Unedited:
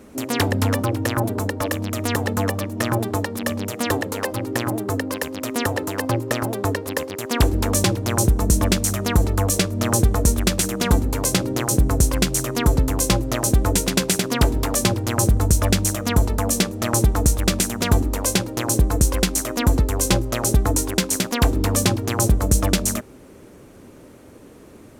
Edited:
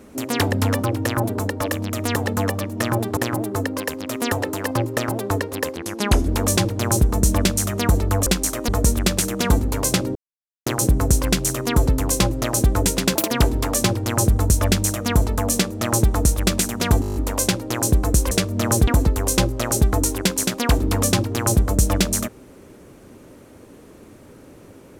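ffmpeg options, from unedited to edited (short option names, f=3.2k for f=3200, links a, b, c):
-filter_complex "[0:a]asplit=18[a][b][c][d][e][f][g][h][i][j][k][l][m][n][o][p][q][r];[a]atrim=end=3.172[s];[b]atrim=start=4.508:end=7.104[t];[c]atrim=start=7.1:end=7.55,asetpts=PTS-STARTPTS,asetrate=37926,aresample=44100[u];[d]atrim=start=7.546:end=9.532[v];[e]atrim=start=19.178:end=19.602[w];[f]atrim=start=10.088:end=11.56,asetpts=PTS-STARTPTS,afade=t=out:st=1.468:d=0.004:c=hsin,apad=pad_dur=0.51[x];[g]atrim=start=11.56:end=14.054,asetpts=PTS-STARTPTS,afade=t=in:d=0.004:c=hsin[y];[h]atrim=start=14.05:end=14.32,asetpts=PTS-STARTPTS,asetrate=74529,aresample=44100[z];[i]atrim=start=14.316:end=18.042[aa];[j]atrim=start=18.018:end=18.042[ab];[k]atrim=start=18.018:end=18.042[ac];[l]atrim=start=18.018:end=18.042[ad];[m]atrim=start=18.018:end=18.042[ae];[n]atrim=start=18.018:end=18.042[af];[o]atrim=start=18.018:end=18.042[ag];[p]atrim=start=18.018:end=19.182[ah];[q]atrim=start=9.528:end=10.092[ai];[r]atrim=start=19.598[aj];[s][t]acrossfade=d=0.004:c1=hsin:c2=hsin[ak];[ak][u]acrossfade=d=0.004:c1=hsin:c2=hsin[al];[al][v]acrossfade=d=0.004:c1=hsin:c2=hsin[am];[am][w]acrossfade=d=0.004:c1=hsin:c2=hsin[an];[x][y]concat=n=2:v=0:a=1[ao];[an][ao]acrossfade=d=0.004:c1=hsin:c2=hsin[ap];[ap][z]acrossfade=d=0.004:c1=hsin:c2=hsin[aq];[aq][aa]acrossfade=d=0.004:c1=hsin:c2=hsin[ar];[ar][ab]acrossfade=d=0.004:c1=hsin:c2=hsin[as];[as][ac]acrossfade=d=0.004:c1=hsin:c2=hsin[at];[at][ad]acrossfade=d=0.004:c1=hsin:c2=hsin[au];[au][ae]acrossfade=d=0.004:c1=hsin:c2=hsin[av];[av][af]acrossfade=d=0.004:c1=hsin:c2=hsin[aw];[aw][ag]acrossfade=d=0.004:c1=hsin:c2=hsin[ax];[ax][ah]acrossfade=d=0.004:c1=hsin:c2=hsin[ay];[ay][ai]acrossfade=d=0.004:c1=hsin:c2=hsin[az];[az][aj]acrossfade=d=0.004:c1=hsin:c2=hsin"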